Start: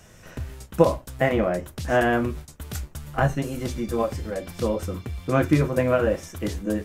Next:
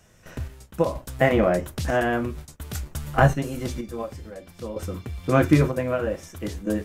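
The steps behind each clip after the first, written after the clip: gate -46 dBFS, range -7 dB; random-step tremolo 2.1 Hz, depth 80%; trim +4.5 dB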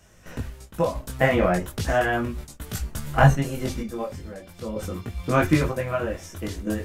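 dynamic bell 370 Hz, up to -5 dB, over -31 dBFS, Q 0.98; chorus voices 4, 0.36 Hz, delay 20 ms, depth 3 ms; trim +5 dB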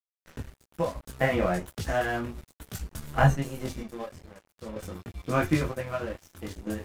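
crossover distortion -38.5 dBFS; trim -4.5 dB

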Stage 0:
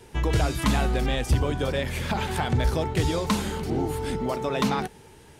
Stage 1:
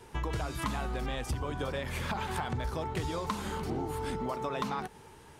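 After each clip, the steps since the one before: peaking EQ 1.1 kHz +7.5 dB 0.86 oct; compression, threshold -26 dBFS, peak gain reduction 10 dB; trim -4.5 dB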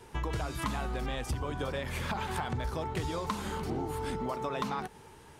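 no audible change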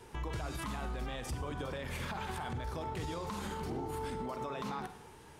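on a send at -11 dB: reverberation RT60 0.60 s, pre-delay 36 ms; on the sum: peak limiter -29 dBFS, peak gain reduction 9.5 dB; trim -1.5 dB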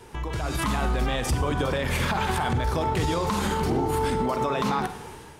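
level rider gain up to 7.5 dB; trim +6.5 dB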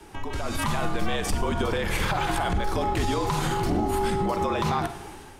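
frequency shift -52 Hz

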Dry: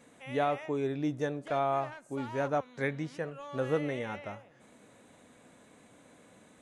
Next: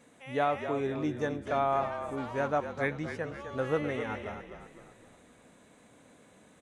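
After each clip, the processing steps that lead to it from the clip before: dynamic bell 1.3 kHz, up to +4 dB, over -41 dBFS, Q 0.7; on a send: frequency-shifting echo 256 ms, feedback 45%, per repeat -35 Hz, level -9 dB; on the sum: trim -1 dB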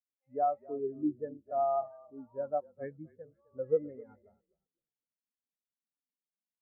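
distance through air 320 m; spectral contrast expander 2.5:1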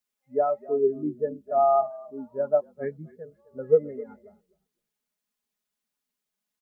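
comb 4.8 ms, depth 71%; trim +8.5 dB

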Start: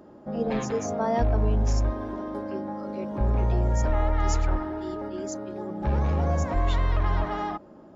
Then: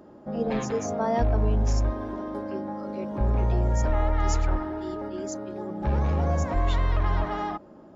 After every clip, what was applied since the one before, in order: no audible change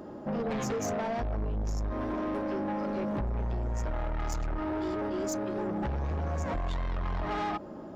in parallel at +0.5 dB: peak limiter -20.5 dBFS, peak gain reduction 8 dB; on the sum: compression, threshold -23 dBFS, peak gain reduction 8.5 dB; saturation -28 dBFS, distortion -11 dB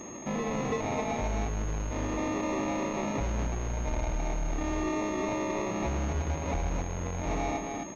sample-and-hold 29×; delay 263 ms -4.5 dB; class-D stage that switches slowly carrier 6.5 kHz

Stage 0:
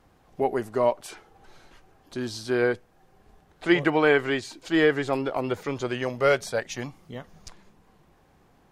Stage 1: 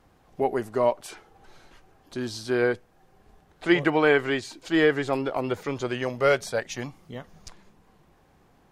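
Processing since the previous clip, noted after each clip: no audible change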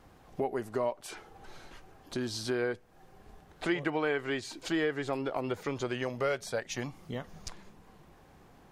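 compression 2.5:1, threshold -36 dBFS, peak gain reduction 14 dB; trim +2.5 dB

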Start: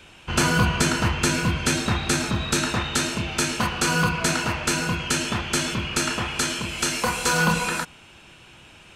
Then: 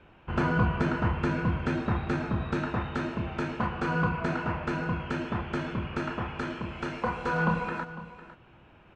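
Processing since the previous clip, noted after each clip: low-pass 1.4 kHz 12 dB/octave; delay 503 ms -15.5 dB; trim -4 dB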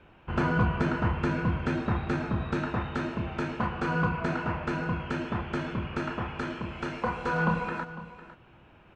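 hard clipper -14.5 dBFS, distortion -41 dB

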